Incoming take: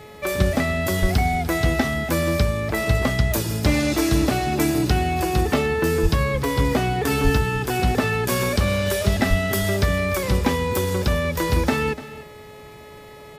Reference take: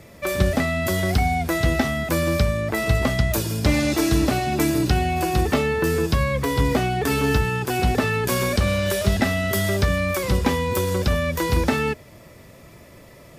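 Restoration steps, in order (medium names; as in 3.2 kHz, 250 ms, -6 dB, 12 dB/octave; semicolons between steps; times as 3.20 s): de-hum 424.4 Hz, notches 10; de-plosive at 1.01/6.02/7.23/9.29 s; inverse comb 296 ms -16 dB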